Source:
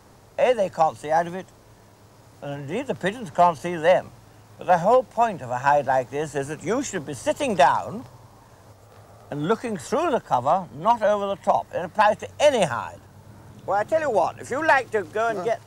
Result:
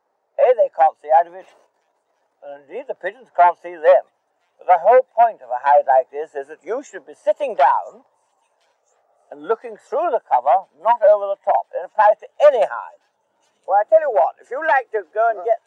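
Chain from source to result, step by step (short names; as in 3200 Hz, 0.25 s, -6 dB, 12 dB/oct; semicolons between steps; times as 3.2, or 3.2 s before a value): one-sided fold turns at -14 dBFS; high shelf 2100 Hz -12 dB; on a send: thin delay 1.011 s, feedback 75%, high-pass 5200 Hz, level -11 dB; 1.25–2.57 on the sum: transient shaper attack -2 dB, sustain +11 dB; HPF 700 Hz 12 dB/oct; bell 1100 Hz -4.5 dB 0.75 oct; maximiser +15.5 dB; spectral expander 1.5:1; gain -1 dB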